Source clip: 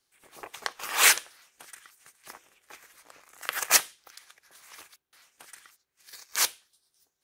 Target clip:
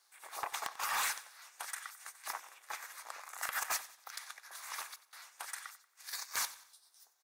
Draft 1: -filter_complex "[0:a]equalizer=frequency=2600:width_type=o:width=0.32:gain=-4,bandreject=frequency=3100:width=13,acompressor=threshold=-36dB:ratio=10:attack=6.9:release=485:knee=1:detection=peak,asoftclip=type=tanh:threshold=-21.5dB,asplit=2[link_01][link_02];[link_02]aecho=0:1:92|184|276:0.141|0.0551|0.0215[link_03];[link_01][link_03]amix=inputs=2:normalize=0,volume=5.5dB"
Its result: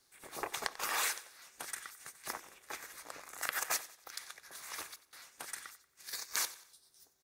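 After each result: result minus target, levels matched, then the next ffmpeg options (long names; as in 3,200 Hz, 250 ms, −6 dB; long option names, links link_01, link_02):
soft clipping: distortion −7 dB; 1,000 Hz band −2.5 dB
-filter_complex "[0:a]equalizer=frequency=2600:width_type=o:width=0.32:gain=-4,bandreject=frequency=3100:width=13,acompressor=threshold=-36dB:ratio=10:attack=6.9:release=485:knee=1:detection=peak,asoftclip=type=tanh:threshold=-32dB,asplit=2[link_01][link_02];[link_02]aecho=0:1:92|184|276:0.141|0.0551|0.0215[link_03];[link_01][link_03]amix=inputs=2:normalize=0,volume=5.5dB"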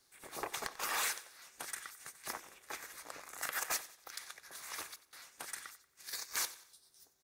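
1,000 Hz band −2.5 dB
-filter_complex "[0:a]equalizer=frequency=2600:width_type=o:width=0.32:gain=-4,bandreject=frequency=3100:width=13,acompressor=threshold=-36dB:ratio=10:attack=6.9:release=485:knee=1:detection=peak,highpass=frequency=870:width_type=q:width=1.6,asoftclip=type=tanh:threshold=-32dB,asplit=2[link_01][link_02];[link_02]aecho=0:1:92|184|276:0.141|0.0551|0.0215[link_03];[link_01][link_03]amix=inputs=2:normalize=0,volume=5.5dB"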